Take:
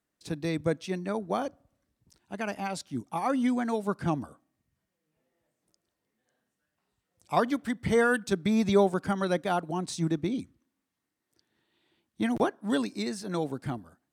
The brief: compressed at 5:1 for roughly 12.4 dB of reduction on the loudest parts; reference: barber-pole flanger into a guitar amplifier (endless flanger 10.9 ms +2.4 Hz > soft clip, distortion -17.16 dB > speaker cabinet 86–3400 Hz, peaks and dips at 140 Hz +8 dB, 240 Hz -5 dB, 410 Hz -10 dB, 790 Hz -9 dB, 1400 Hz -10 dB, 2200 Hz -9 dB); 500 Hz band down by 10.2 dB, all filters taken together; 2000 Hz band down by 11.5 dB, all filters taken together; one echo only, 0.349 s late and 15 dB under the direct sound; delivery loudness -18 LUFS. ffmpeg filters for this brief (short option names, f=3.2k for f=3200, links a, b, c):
-filter_complex "[0:a]equalizer=f=500:t=o:g=-5.5,equalizer=f=2k:t=o:g=-5.5,acompressor=threshold=-36dB:ratio=5,aecho=1:1:349:0.178,asplit=2[a][b];[b]adelay=10.9,afreqshift=2.4[c];[a][c]amix=inputs=2:normalize=1,asoftclip=threshold=-35dB,highpass=86,equalizer=f=140:t=q:w=4:g=8,equalizer=f=240:t=q:w=4:g=-5,equalizer=f=410:t=q:w=4:g=-10,equalizer=f=790:t=q:w=4:g=-9,equalizer=f=1.4k:t=q:w=4:g=-10,equalizer=f=2.2k:t=q:w=4:g=-9,lowpass=f=3.4k:w=0.5412,lowpass=f=3.4k:w=1.3066,volume=29dB"